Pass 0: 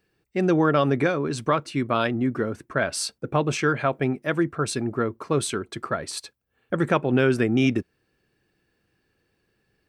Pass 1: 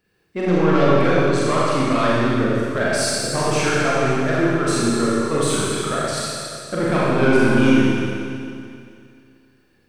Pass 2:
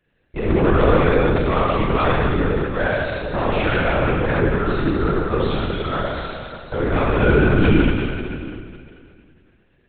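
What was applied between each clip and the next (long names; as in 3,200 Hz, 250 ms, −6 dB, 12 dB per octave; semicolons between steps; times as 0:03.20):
soft clipping −16.5 dBFS, distortion −13 dB; healed spectral selection 0:07.33–0:07.67, 420–2,000 Hz before; four-comb reverb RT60 2.4 s, combs from 30 ms, DRR −7.5 dB
linear-prediction vocoder at 8 kHz whisper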